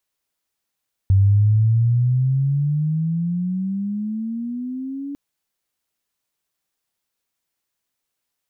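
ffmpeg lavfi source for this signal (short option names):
-f lavfi -i "aevalsrc='pow(10,(-10.5-16*t/4.05)/20)*sin(2*PI*95.4*4.05/(19*log(2)/12)*(exp(19*log(2)/12*t/4.05)-1))':d=4.05:s=44100"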